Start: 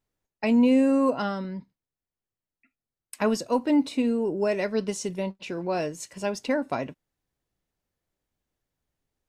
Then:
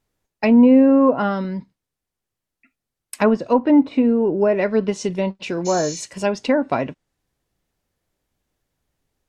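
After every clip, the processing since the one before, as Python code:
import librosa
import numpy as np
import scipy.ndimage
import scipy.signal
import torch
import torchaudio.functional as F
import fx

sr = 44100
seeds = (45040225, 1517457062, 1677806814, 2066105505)

y = fx.env_lowpass_down(x, sr, base_hz=1500.0, full_db=-20.5)
y = fx.spec_repair(y, sr, seeds[0], start_s=5.68, length_s=0.31, low_hz=1900.0, high_hz=7300.0, source='after')
y = F.gain(torch.from_numpy(y), 8.0).numpy()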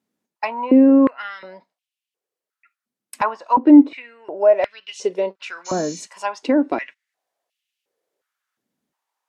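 y = fx.filter_held_highpass(x, sr, hz=2.8, low_hz=220.0, high_hz=2800.0)
y = F.gain(torch.from_numpy(y), -4.5).numpy()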